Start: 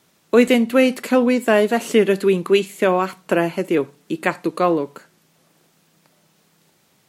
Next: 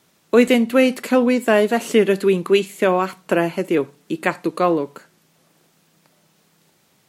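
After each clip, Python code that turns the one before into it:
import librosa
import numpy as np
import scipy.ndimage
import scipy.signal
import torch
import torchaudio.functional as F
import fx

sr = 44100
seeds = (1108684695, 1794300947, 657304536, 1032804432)

y = x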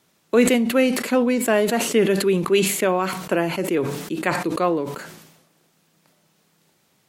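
y = fx.sustainer(x, sr, db_per_s=56.0)
y = y * librosa.db_to_amplitude(-3.5)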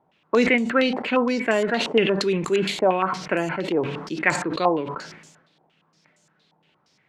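y = fx.notch(x, sr, hz=1200.0, q=24.0)
y = fx.comb_fb(y, sr, f0_hz=150.0, decay_s=0.16, harmonics='all', damping=0.0, mix_pct=40)
y = fx.filter_held_lowpass(y, sr, hz=8.6, low_hz=840.0, high_hz=7200.0)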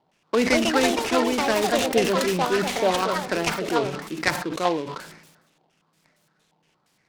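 y = fx.echo_pitch(x, sr, ms=274, semitones=5, count=2, db_per_echo=-3.0)
y = fx.noise_mod_delay(y, sr, seeds[0], noise_hz=2600.0, depth_ms=0.043)
y = y * librosa.db_to_amplitude(-2.5)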